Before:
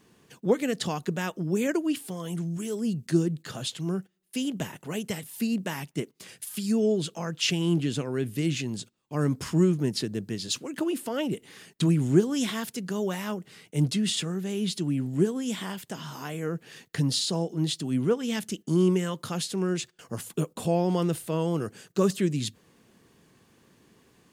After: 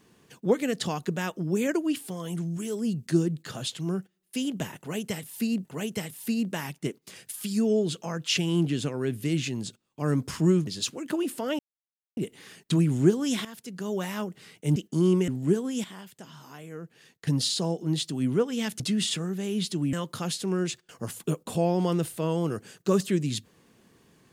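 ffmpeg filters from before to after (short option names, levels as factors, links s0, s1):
-filter_complex "[0:a]asplit=11[s0][s1][s2][s3][s4][s5][s6][s7][s8][s9][s10];[s0]atrim=end=5.652[s11];[s1]atrim=start=4.778:end=9.802[s12];[s2]atrim=start=10.348:end=11.27,asetpts=PTS-STARTPTS,afade=t=out:st=0.918:d=0.004:c=hsin,apad=pad_dur=0.58[s13];[s3]atrim=start=11.27:end=12.55,asetpts=PTS-STARTPTS,afade=t=in:d=0.004:c=hsin,afade=t=out:st=1.276:d=0.004:c=hsin:silence=0.188365[s14];[s4]atrim=start=12.55:end=13.862,asetpts=PTS-STARTPTS,afade=t=in:d=0.6:silence=0.188365[s15];[s5]atrim=start=18.508:end=19.032[s16];[s6]atrim=start=14.988:end=15.552[s17];[s7]atrim=start=15.548:end=16.982,asetpts=PTS-STARTPTS,volume=0.355[s18];[s8]atrim=start=16.978:end=18.512[s19];[s9]atrim=start=13.858:end=14.992[s20];[s10]atrim=start=19.028[s21];[s11][s12]acrossfade=d=0.004:c1=hsin:c2=hsin[s22];[s13][s14][s15]concat=n=3:v=0:a=1[s23];[s22][s23]acrossfade=d=0.004:c1=hsin:c2=hsin[s24];[s24][s16]acrossfade=d=0.004:c1=hsin:c2=hsin[s25];[s25][s17]acrossfade=d=0.004:c1=hsin:c2=hsin[s26];[s26][s18]acrossfade=d=0.004:c1=hsin:c2=hsin[s27];[s27][s19]acrossfade=d=0.004:c1=hsin:c2=hsin[s28];[s28][s20]acrossfade=d=0.004:c1=hsin:c2=hsin[s29];[s29][s21]acrossfade=d=0.004:c1=hsin:c2=hsin"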